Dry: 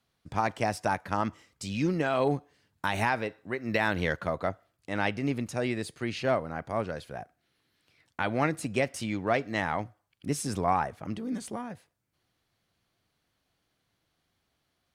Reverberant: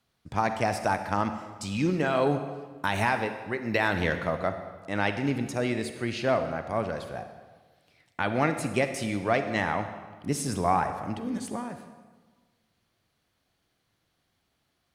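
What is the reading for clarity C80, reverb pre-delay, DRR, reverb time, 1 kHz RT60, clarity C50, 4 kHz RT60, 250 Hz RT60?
10.0 dB, 38 ms, 8.0 dB, 1.4 s, 1.4 s, 9.0 dB, 1.2 s, 1.4 s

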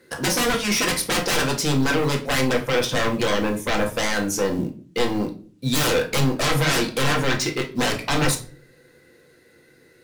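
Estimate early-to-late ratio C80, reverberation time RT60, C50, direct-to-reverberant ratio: 18.0 dB, no single decay rate, 12.5 dB, 2.0 dB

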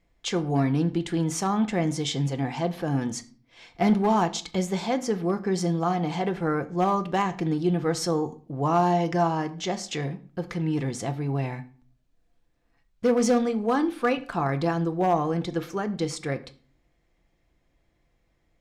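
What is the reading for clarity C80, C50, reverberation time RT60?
20.5 dB, 17.0 dB, 0.40 s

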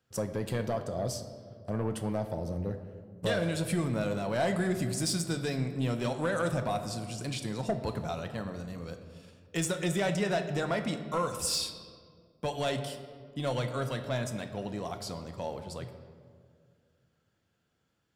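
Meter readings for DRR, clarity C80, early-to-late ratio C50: 7.0 dB, 10.5 dB, 9.5 dB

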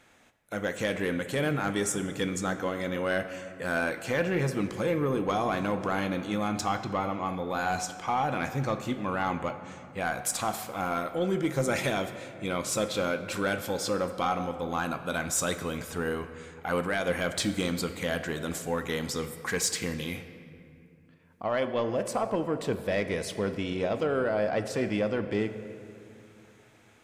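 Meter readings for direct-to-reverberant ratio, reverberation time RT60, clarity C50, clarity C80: 9.0 dB, 2.7 s, 10.5 dB, 11.5 dB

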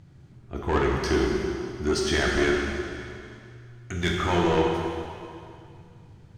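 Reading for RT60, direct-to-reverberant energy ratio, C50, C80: 2.4 s, -2.0 dB, 0.5 dB, 1.5 dB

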